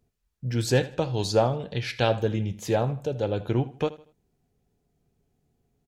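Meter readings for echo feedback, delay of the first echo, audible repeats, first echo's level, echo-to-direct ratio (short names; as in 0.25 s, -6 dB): 34%, 79 ms, 2, -18.0 dB, -17.5 dB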